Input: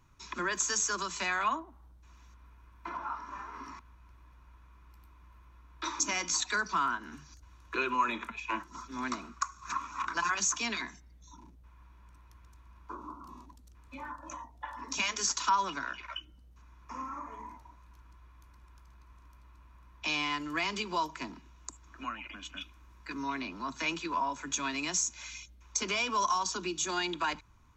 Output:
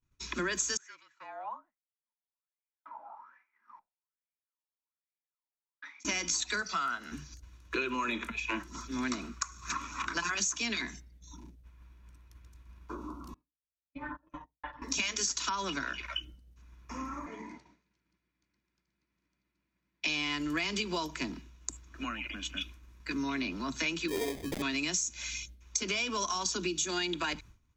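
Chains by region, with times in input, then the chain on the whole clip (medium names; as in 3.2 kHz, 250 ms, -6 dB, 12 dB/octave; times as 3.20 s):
0.77–6.05 s: wah-wah 1.2 Hz 770–2300 Hz, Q 12 + peaking EQ 560 Hz +5 dB 1.9 oct + frequency shift -45 Hz
6.62–7.12 s: high-pass 420 Hz 6 dB/octave + comb 1.5 ms, depth 55%
13.34–14.82 s: distance through air 340 m + gate -45 dBFS, range -25 dB + comb 6.6 ms, depth 88%
17.26–20.07 s: cabinet simulation 170–7200 Hz, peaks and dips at 180 Hz +9 dB, 330 Hz +5 dB, 1.1 kHz -5 dB, 2.1 kHz +6 dB, 4.6 kHz +5 dB + feedback delay 233 ms, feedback 57%, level -21 dB
24.08–24.62 s: peaking EQ 1.5 kHz -11.5 dB 0.76 oct + sample-rate reducer 1.4 kHz + transformer saturation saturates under 360 Hz
whole clip: expander -50 dBFS; peaking EQ 1 kHz -10.5 dB 1.1 oct; compression 6:1, threshold -36 dBFS; trim +7 dB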